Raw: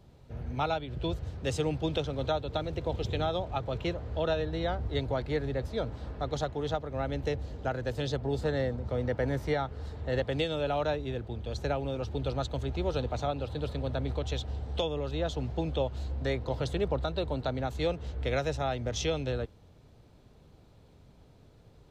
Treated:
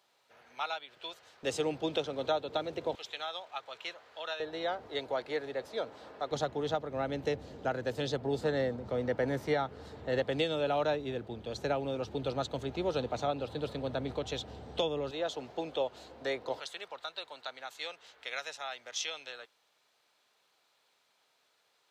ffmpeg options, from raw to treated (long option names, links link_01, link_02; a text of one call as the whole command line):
ffmpeg -i in.wav -af "asetnsamples=nb_out_samples=441:pad=0,asendcmd='1.43 highpass f 290;2.95 highpass f 1200;4.4 highpass f 450;6.31 highpass f 180;15.11 highpass f 410;16.6 highpass f 1300',highpass=1100" out.wav